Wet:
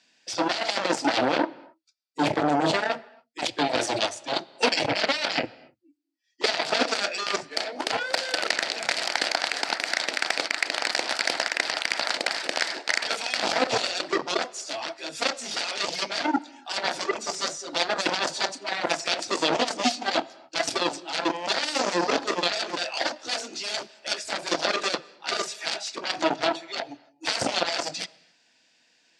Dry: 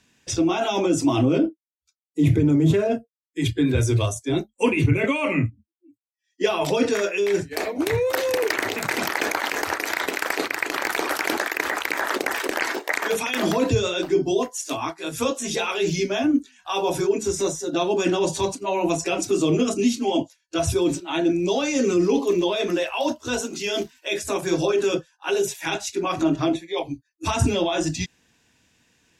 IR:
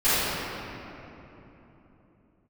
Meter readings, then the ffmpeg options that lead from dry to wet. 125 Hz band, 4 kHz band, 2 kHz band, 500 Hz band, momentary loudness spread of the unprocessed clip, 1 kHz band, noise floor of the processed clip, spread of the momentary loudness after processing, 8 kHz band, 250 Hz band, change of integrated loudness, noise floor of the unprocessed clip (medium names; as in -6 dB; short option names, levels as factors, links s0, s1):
-18.5 dB, +4.5 dB, 0.0 dB, -7.0 dB, 7 LU, +0.5 dB, -65 dBFS, 7 LU, -2.5 dB, -10.0 dB, -3.0 dB, -79 dBFS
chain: -filter_complex "[0:a]aeval=exprs='0.398*(cos(1*acos(clip(val(0)/0.398,-1,1)))-cos(1*PI/2))+0.112*(cos(7*acos(clip(val(0)/0.398,-1,1)))-cos(7*PI/2))':c=same,highpass=380,equalizer=f=410:t=q:w=4:g=-8,equalizer=f=660:t=q:w=4:g=4,equalizer=f=1100:t=q:w=4:g=-7,equalizer=f=4600:t=q:w=4:g=8,equalizer=f=6600:t=q:w=4:g=-4,lowpass=f=8000:w=0.5412,lowpass=f=8000:w=1.3066,asplit=2[s0][s1];[1:a]atrim=start_sample=2205,afade=t=out:st=0.34:d=0.01,atrim=end_sample=15435[s2];[s1][s2]afir=irnorm=-1:irlink=0,volume=0.0126[s3];[s0][s3]amix=inputs=2:normalize=0"